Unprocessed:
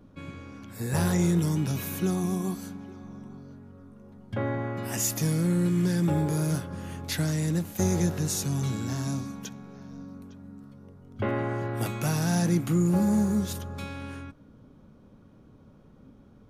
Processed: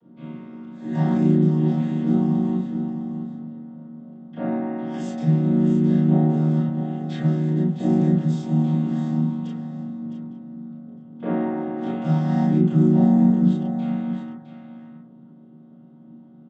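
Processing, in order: vocoder on a held chord minor triad, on D#3; Bessel low-pass 5.6 kHz, order 2; peaking EQ 3.3 kHz +10.5 dB 0.24 oct; delay 661 ms -10 dB; reverberation RT60 0.40 s, pre-delay 22 ms, DRR -6.5 dB

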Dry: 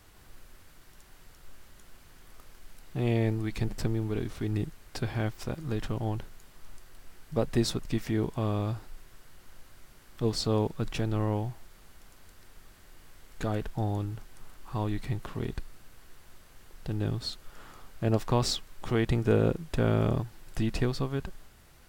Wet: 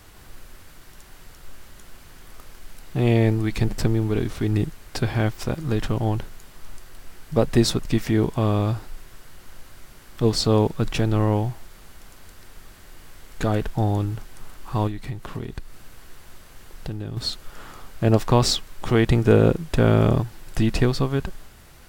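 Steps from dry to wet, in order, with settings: 14.87–17.17 s: compression 12:1, threshold -35 dBFS, peak gain reduction 11.5 dB; trim +8.5 dB

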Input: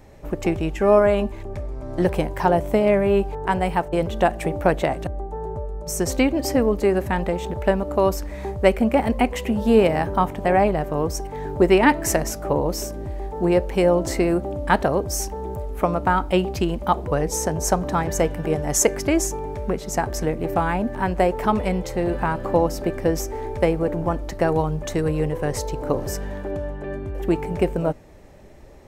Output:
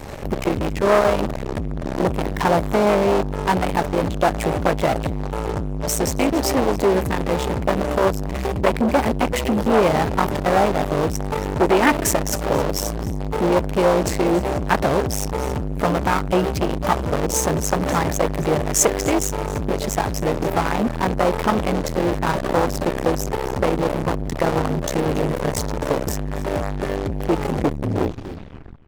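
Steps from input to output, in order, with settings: tape stop on the ending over 1.51 s; in parallel at -8 dB: fuzz box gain 42 dB, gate -47 dBFS; on the sum: delay 277 ms -17 dB; transformer saturation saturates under 1.1 kHz; trim +1 dB

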